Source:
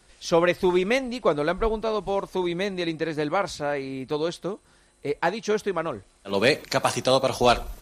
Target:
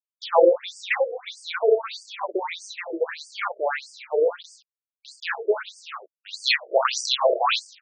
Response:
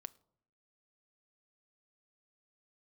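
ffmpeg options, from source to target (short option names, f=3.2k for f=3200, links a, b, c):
-af "aeval=exprs='val(0)*gte(abs(val(0)),0.0112)':c=same,aecho=1:1:30|63:0.562|0.562,afftfilt=real='re*between(b*sr/1024,460*pow(6600/460,0.5+0.5*sin(2*PI*1.6*pts/sr))/1.41,460*pow(6600/460,0.5+0.5*sin(2*PI*1.6*pts/sr))*1.41)':imag='im*between(b*sr/1024,460*pow(6600/460,0.5+0.5*sin(2*PI*1.6*pts/sr))/1.41,460*pow(6600/460,0.5+0.5*sin(2*PI*1.6*pts/sr))*1.41)':win_size=1024:overlap=0.75,volume=6dB"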